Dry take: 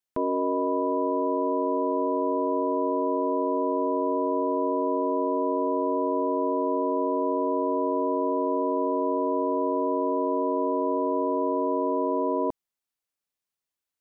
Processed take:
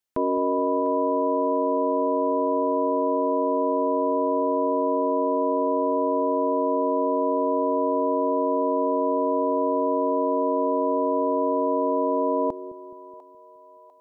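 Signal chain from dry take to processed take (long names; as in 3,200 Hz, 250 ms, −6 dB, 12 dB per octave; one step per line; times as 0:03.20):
echo with a time of its own for lows and highs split 560 Hz, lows 211 ms, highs 698 ms, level −14 dB
level +2.5 dB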